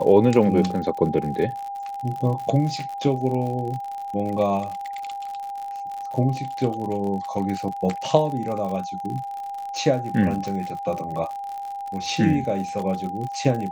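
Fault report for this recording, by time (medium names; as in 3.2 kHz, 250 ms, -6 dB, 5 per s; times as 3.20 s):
crackle 71 per s -30 dBFS
whine 800 Hz -29 dBFS
10.48 s: pop -19 dBFS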